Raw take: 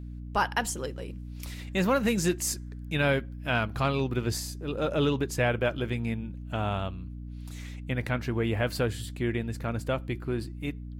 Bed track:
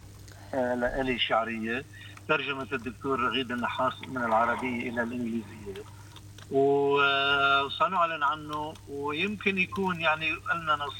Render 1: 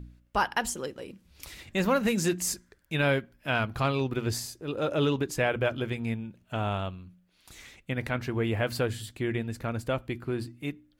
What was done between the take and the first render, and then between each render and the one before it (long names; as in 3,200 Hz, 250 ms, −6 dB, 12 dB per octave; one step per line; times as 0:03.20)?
hum removal 60 Hz, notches 5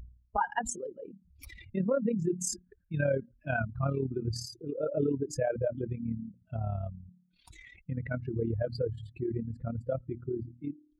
expanding power law on the bin magnitudes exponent 2.7
amplitude modulation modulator 36 Hz, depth 45%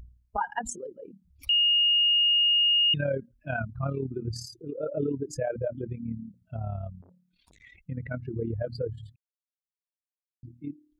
0:01.49–0:02.94: beep over 2,850 Hz −19 dBFS
0:07.02–0:07.62: saturating transformer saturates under 1,000 Hz
0:09.16–0:10.43: silence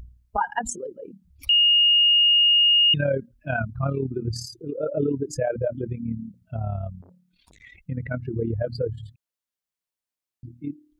level +5 dB